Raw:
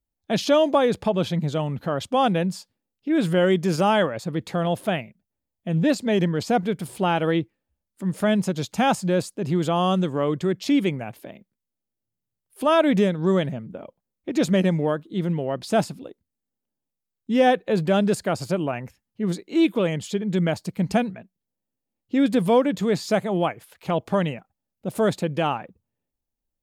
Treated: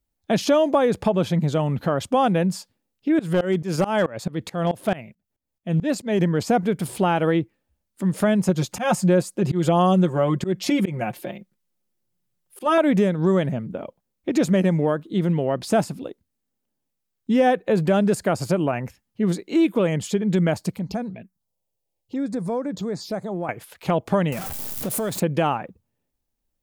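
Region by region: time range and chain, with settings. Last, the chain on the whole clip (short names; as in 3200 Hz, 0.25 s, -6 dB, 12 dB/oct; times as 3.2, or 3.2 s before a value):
3.19–6.21 tremolo saw up 4.6 Hz, depth 95% + hard clip -16 dBFS
8.48–12.78 comb 5.6 ms, depth 75% + auto swell 0.172 s
20.76–23.49 compressor 2:1, threshold -38 dBFS + envelope phaser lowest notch 240 Hz, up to 3000 Hz, full sweep at -30 dBFS
24.32–25.2 zero-crossing step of -33.5 dBFS + high shelf 6700 Hz +11.5 dB + compressor, threshold -28 dBFS
whole clip: dynamic EQ 3700 Hz, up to -6 dB, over -44 dBFS, Q 1.3; compressor 2:1, threshold -24 dBFS; gain +5.5 dB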